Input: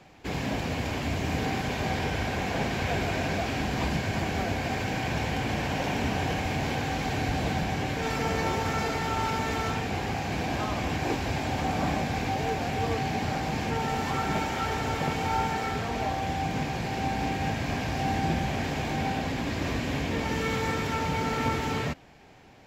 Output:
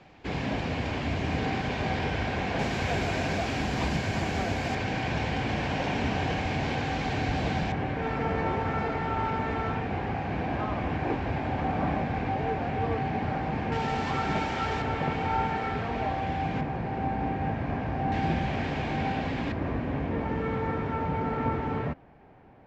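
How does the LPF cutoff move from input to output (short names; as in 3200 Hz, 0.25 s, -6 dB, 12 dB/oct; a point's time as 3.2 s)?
4300 Hz
from 2.59 s 8400 Hz
from 4.75 s 4800 Hz
from 7.72 s 2000 Hz
from 13.72 s 4500 Hz
from 14.82 s 2700 Hz
from 16.61 s 1500 Hz
from 18.12 s 3300 Hz
from 19.52 s 1400 Hz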